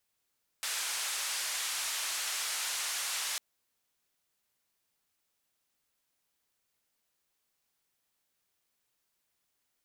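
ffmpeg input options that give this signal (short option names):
-f lavfi -i "anoisesrc=c=white:d=2.75:r=44100:seed=1,highpass=f=1000,lowpass=f=9400,volume=-26dB"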